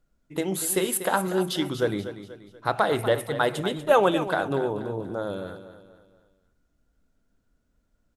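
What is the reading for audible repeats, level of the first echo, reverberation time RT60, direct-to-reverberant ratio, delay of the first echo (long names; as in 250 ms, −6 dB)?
4, −12.0 dB, no reverb audible, no reverb audible, 241 ms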